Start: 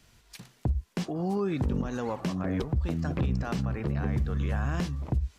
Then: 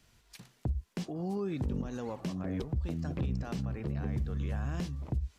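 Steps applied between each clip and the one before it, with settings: dynamic bell 1.3 kHz, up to -5 dB, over -48 dBFS, Q 0.82; trim -5 dB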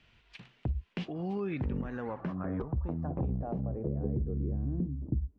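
low-pass sweep 2.8 kHz -> 290 Hz, 1.28–4.80 s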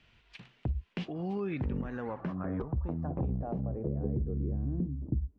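no audible change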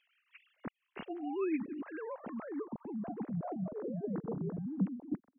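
formants replaced by sine waves; trim -5 dB

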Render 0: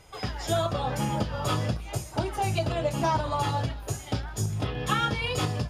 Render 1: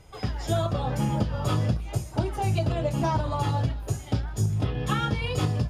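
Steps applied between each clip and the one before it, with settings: bass shelf 400 Hz +8.5 dB; trim -3.5 dB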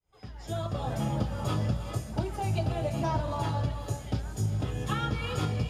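fade-in on the opening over 0.85 s; gated-style reverb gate 450 ms rising, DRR 7.5 dB; trim -4.5 dB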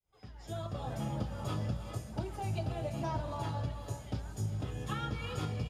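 delay 831 ms -20.5 dB; trim -6.5 dB

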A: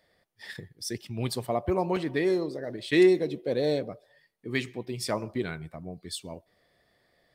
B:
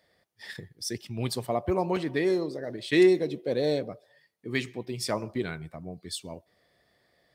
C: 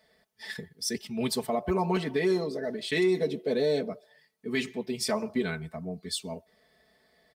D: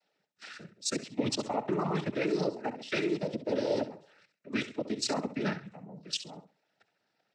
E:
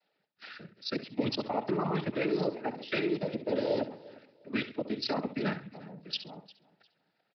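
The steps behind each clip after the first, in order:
high-pass 46 Hz; peaking EQ 5.9 kHz +2 dB
comb 4.6 ms, depth 93%; peak limiter -17.5 dBFS, peak gain reduction 8 dB
level held to a coarse grid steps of 16 dB; flutter echo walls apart 11.4 m, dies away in 0.31 s; noise-vocoded speech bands 12; trim +2.5 dB
feedback delay 352 ms, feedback 26%, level -21 dB; resampled via 11.025 kHz

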